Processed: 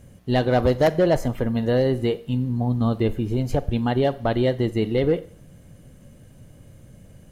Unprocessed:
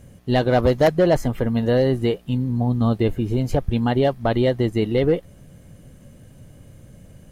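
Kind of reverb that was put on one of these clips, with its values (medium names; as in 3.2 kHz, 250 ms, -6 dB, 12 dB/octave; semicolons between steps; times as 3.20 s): Schroeder reverb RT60 0.52 s, combs from 32 ms, DRR 16 dB; trim -2 dB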